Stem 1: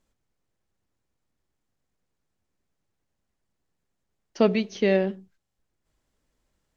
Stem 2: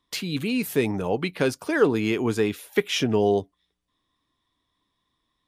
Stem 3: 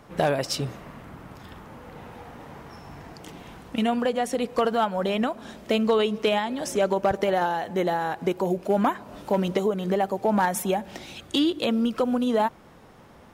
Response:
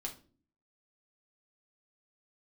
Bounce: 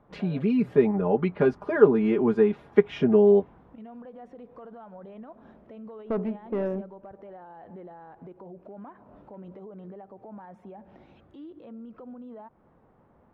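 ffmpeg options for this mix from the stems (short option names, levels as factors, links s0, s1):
-filter_complex "[0:a]adynamicsmooth=sensitivity=2:basefreq=680,asoftclip=type=tanh:threshold=0.126,adelay=1700,volume=0.668[s0];[1:a]aecho=1:1:4.9:0.93,volume=0.891[s1];[2:a]acompressor=threshold=0.0501:ratio=6,alimiter=level_in=1.41:limit=0.0631:level=0:latency=1:release=40,volume=0.708,volume=0.335[s2];[s0][s1][s2]amix=inputs=3:normalize=0,lowpass=1200"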